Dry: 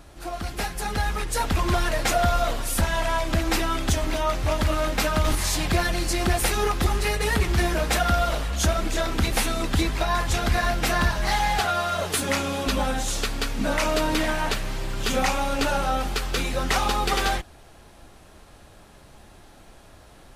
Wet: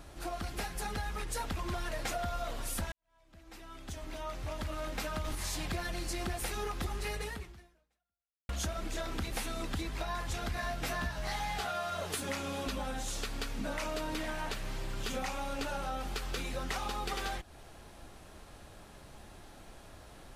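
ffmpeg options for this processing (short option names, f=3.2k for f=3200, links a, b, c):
-filter_complex "[0:a]asettb=1/sr,asplit=3[a][b][c];[a]atrim=end=10.554[d];[b]atrim=start=10.55:end=11.9,asetpts=PTS-STARTPTS,afade=t=in:d=0.004:c=qsin,afade=t=out:st=1.346:d=0.004:c=qsin,asplit=2[e][f];[f]adelay=16,volume=-3.5dB[g];[e][g]amix=inputs=2:normalize=0,atrim=end_sample=59535[h];[c]atrim=start=11.896[i];[d][h]acrossfade=d=0.004:c1=hsin:c2=qsin[j];[j][i]acrossfade=d=0.004:c1=qsin:c2=hsin,asplit=3[k][l][m];[k]atrim=end=2.92,asetpts=PTS-STARTPTS,afade=t=out:st=2.916:d=0.004:c=hsin[n];[l]atrim=start=2.92:end=8.49,asetpts=PTS-STARTPTS,afade=t=in:d=2.63:c=qua,afade=t=out:st=4.27:d=1.3:c=exp[o];[m]atrim=start=8.49,asetpts=PTS-STARTPTS,afade=t=in:d=0.004:c=hsin[p];[n][o][p]concat=n=3:v=0:a=1,acompressor=threshold=-32dB:ratio=4,volume=-3dB"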